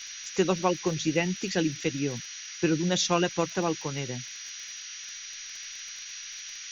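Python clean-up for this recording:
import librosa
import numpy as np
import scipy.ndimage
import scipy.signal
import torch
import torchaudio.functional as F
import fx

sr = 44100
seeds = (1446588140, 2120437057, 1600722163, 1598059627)

y = fx.fix_declick_ar(x, sr, threshold=6.5)
y = fx.notch(y, sr, hz=5800.0, q=30.0)
y = fx.noise_reduce(y, sr, print_start_s=4.8, print_end_s=5.3, reduce_db=30.0)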